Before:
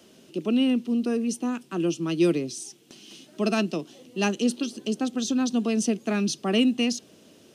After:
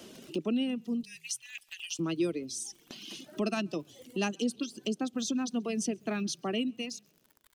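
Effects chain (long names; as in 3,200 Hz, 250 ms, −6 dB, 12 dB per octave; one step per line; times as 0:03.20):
fade-out on the ending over 1.55 s
0:01.03–0:01.99: Butterworth high-pass 1,800 Hz 96 dB per octave
surface crackle 80 per second −43 dBFS
downward compressor 2 to 1, threshold −41 dBFS, peak gain reduction 13.5 dB
echo with shifted repeats 133 ms, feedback 32%, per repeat −36 Hz, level −20 dB
reverb reduction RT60 1.7 s
level +5 dB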